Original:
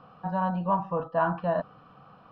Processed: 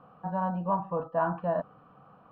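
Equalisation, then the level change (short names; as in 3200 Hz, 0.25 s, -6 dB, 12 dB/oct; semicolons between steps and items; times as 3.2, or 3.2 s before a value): LPF 1200 Hz 6 dB/oct; air absorption 78 m; low shelf 160 Hz -5.5 dB; 0.0 dB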